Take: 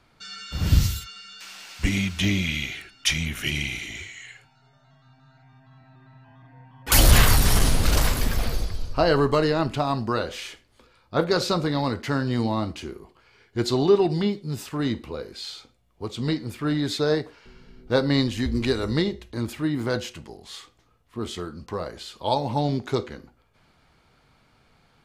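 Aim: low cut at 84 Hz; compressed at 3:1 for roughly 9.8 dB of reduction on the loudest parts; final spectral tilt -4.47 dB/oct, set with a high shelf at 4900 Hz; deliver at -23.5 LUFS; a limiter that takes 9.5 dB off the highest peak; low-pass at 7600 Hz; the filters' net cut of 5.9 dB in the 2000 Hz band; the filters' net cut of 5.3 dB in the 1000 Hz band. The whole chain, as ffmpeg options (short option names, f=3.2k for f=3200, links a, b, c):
-af "highpass=84,lowpass=7.6k,equalizer=f=1k:t=o:g=-5.5,equalizer=f=2k:t=o:g=-7.5,highshelf=f=4.9k:g=8,acompressor=threshold=-28dB:ratio=3,volume=9.5dB,alimiter=limit=-11dB:level=0:latency=1"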